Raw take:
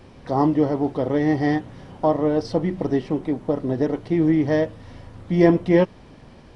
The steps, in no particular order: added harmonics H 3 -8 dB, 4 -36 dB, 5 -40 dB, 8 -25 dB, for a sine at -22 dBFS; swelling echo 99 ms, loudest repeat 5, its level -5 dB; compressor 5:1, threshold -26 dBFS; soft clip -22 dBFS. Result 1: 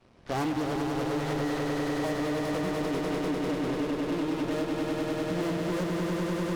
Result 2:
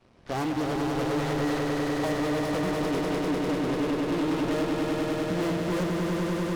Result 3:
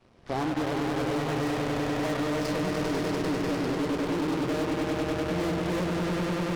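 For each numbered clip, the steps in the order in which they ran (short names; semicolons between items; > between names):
added harmonics > swelling echo > compressor > soft clip; added harmonics > compressor > swelling echo > soft clip; soft clip > swelling echo > added harmonics > compressor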